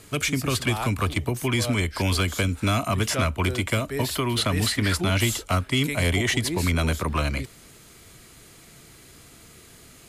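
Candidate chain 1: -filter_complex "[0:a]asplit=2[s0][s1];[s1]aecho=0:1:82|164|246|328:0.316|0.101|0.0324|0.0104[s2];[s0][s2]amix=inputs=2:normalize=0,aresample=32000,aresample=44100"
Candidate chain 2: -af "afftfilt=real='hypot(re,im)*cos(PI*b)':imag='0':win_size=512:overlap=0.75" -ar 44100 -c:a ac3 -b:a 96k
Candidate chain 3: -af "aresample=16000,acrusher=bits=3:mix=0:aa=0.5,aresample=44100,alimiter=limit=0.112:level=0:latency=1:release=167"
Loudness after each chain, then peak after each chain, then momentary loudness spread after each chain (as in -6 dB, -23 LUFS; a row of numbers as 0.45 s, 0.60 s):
-24.0 LUFS, -29.0 LUFS, -29.0 LUFS; -9.0 dBFS, -8.0 dBFS, -19.0 dBFS; 3 LU, 4 LU, 4 LU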